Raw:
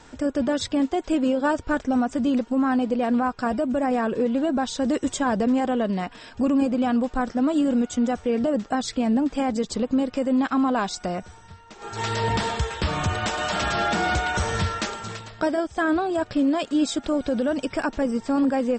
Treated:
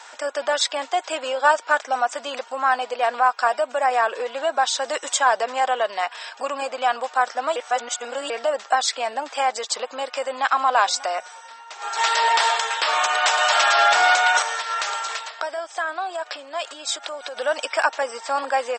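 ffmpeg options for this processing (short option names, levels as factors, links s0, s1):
-filter_complex "[0:a]asplit=2[s0][s1];[s1]afade=t=in:st=9.91:d=0.01,afade=t=out:st=10.44:d=0.01,aecho=0:1:590|1180:0.133352|0.0266704[s2];[s0][s2]amix=inputs=2:normalize=0,asettb=1/sr,asplit=3[s3][s4][s5];[s3]atrim=end=14.424[s6];[s4]atrim=start=14.42:end=17.37,asetpts=PTS-STARTPTS,afade=t=in:d=0.004:c=qsin,afade=t=out:st=2.946:d=0.004:c=qsin,acompressor=threshold=0.0398:ratio=6:attack=3.2:release=140:knee=1:detection=peak[s7];[s5]atrim=start=17.366[s8];[s6][s7]acrossfade=d=0.004:c1=hsin:c2=qsin[s9];[s9][s8]acrossfade=d=0.004:c1=qsin:c2=hsin,asplit=3[s10][s11][s12];[s10]atrim=end=7.562[s13];[s11]atrim=start=7.558:end=8.302,asetpts=PTS-STARTPTS,areverse[s14];[s12]atrim=start=8.298[s15];[s13][s14]acrossfade=d=0.004:c1=hsin:c2=hsin[s16];[s16][s15]acrossfade=d=0.004:c1=hsin:c2=hsin,highpass=f=680:w=0.5412,highpass=f=680:w=1.3066,volume=2.82"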